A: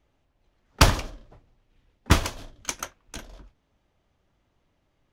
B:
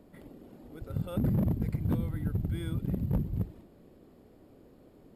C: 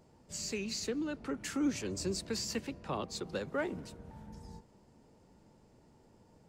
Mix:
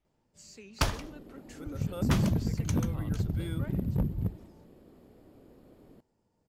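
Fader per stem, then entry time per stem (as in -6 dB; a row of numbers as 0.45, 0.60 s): -11.0, +0.5, -12.5 dB; 0.00, 0.85, 0.05 s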